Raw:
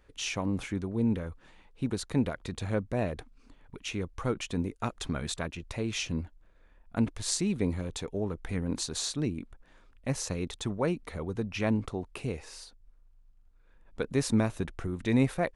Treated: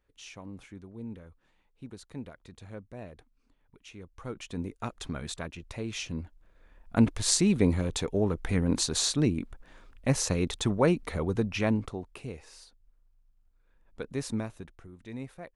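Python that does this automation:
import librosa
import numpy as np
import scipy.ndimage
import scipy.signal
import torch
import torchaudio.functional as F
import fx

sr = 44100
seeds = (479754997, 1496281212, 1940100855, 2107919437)

y = fx.gain(x, sr, db=fx.line((3.96, -13.0), (4.65, -3.0), (6.16, -3.0), (6.96, 5.5), (11.35, 5.5), (12.23, -5.5), (14.3, -5.5), (14.86, -15.0)))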